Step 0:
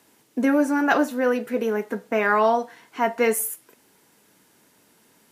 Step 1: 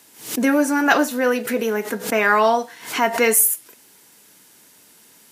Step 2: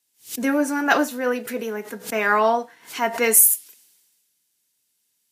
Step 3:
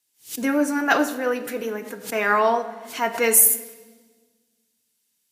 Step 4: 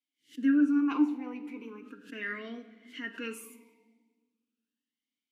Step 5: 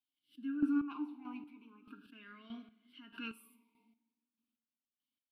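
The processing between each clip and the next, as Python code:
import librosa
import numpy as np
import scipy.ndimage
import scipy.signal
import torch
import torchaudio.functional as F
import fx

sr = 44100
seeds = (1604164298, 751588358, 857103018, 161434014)

y1 = fx.high_shelf(x, sr, hz=2200.0, db=10.0)
y1 = fx.pre_swell(y1, sr, db_per_s=120.0)
y1 = F.gain(torch.from_numpy(y1), 1.5).numpy()
y2 = fx.band_widen(y1, sr, depth_pct=70)
y2 = F.gain(torch.from_numpy(y2), -4.0).numpy()
y3 = fx.room_shoebox(y2, sr, seeds[0], volume_m3=1300.0, walls='mixed', distance_m=0.52)
y3 = F.gain(torch.from_numpy(y3), -1.0).numpy()
y4 = fx.vowel_sweep(y3, sr, vowels='i-u', hz=0.38)
y5 = fx.chopper(y4, sr, hz=1.6, depth_pct=65, duty_pct=30)
y5 = fx.fixed_phaser(y5, sr, hz=1900.0, stages=6)
y5 = F.gain(torch.from_numpy(y5), -1.5).numpy()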